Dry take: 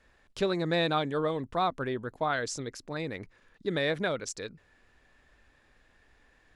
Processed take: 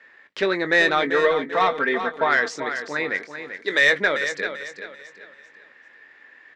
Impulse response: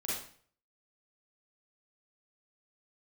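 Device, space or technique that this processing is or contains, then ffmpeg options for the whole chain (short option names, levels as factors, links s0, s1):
intercom: -filter_complex "[0:a]asettb=1/sr,asplit=3[s0][s1][s2];[s0]atrim=end=1.024[s3];[s1]atrim=start=1.02:end=2.29,asetpts=PTS-STARTPTS,afade=t=in:d=0.004:c=qsin,afade=t=out:st=1.266:d=0.004:c=qsin,aecho=1:1:4.4:0.79,atrim=end_sample=56007[s4];[s2]atrim=start=2.286[s5];[s3][s4]acrossfade=d=0.004:c1=hsin:c2=qsin[s6];[s6][s5]acrossfade=d=0.004:c1=qsin:c2=hsin,asettb=1/sr,asplit=3[s7][s8][s9];[s7]atrim=end=3.184[s10];[s8]atrim=start=3.18:end=3.93,asetpts=PTS-STARTPTS,afade=t=in:d=0.004:c=qsin,afade=t=out:st=0.746:d=0.004:c=qsin,bass=f=250:g=-13,treble=f=4000:g=13[s11];[s9]atrim=start=3.926[s12];[s10][s11]acrossfade=d=0.004:c1=hsin:c2=qsin[s13];[s13][s12]acrossfade=d=0.004:c1=qsin:c2=hsin,highpass=330,lowpass=4100,equalizer=f=1900:t=o:w=0.52:g=12,asoftclip=type=tanh:threshold=0.168,equalizer=f=710:t=o:w=0.26:g=-5,asplit=2[s14][s15];[s15]adelay=21,volume=0.282[s16];[s14][s16]amix=inputs=2:normalize=0,aecho=1:1:390|780|1170|1560:0.335|0.114|0.0387|0.0132,volume=2.51"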